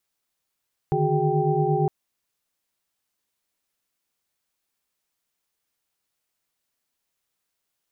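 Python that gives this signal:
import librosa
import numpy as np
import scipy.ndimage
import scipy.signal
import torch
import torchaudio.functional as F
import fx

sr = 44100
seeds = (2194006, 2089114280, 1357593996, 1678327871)

y = fx.chord(sr, length_s=0.96, notes=(50, 51, 66, 68, 79), wave='sine', level_db=-25.5)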